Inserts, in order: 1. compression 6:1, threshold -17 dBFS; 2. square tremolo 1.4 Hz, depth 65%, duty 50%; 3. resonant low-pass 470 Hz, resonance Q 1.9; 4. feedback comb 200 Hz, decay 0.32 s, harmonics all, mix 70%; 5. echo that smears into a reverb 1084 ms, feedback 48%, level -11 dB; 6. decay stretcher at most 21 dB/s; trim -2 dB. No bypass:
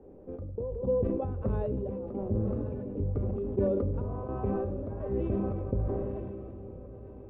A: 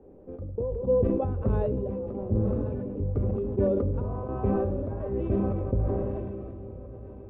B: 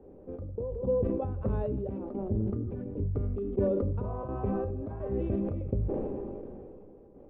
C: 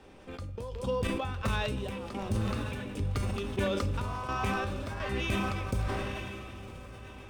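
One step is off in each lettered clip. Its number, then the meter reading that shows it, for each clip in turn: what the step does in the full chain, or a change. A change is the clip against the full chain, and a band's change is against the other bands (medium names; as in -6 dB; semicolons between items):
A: 1, mean gain reduction 2.0 dB; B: 5, momentary loudness spread change -1 LU; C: 3, 1 kHz band +10.5 dB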